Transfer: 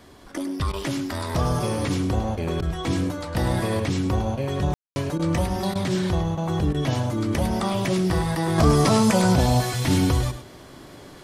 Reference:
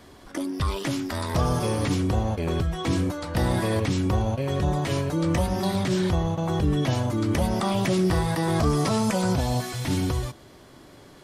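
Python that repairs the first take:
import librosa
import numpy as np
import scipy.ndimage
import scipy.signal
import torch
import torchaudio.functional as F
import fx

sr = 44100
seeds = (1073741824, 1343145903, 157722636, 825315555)

y = fx.fix_ambience(x, sr, seeds[0], print_start_s=10.44, print_end_s=10.94, start_s=4.74, end_s=4.96)
y = fx.fix_interpolate(y, sr, at_s=(0.72, 2.61, 5.18, 5.74, 6.73), length_ms=12.0)
y = fx.fix_echo_inverse(y, sr, delay_ms=104, level_db=-11.0)
y = fx.fix_level(y, sr, at_s=8.58, step_db=-5.0)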